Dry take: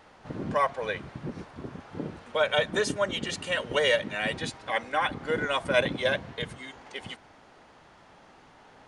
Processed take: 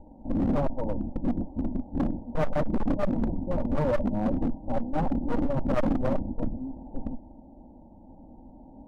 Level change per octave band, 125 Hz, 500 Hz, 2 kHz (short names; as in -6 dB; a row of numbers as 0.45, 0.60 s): +7.5, -2.5, -16.0 dB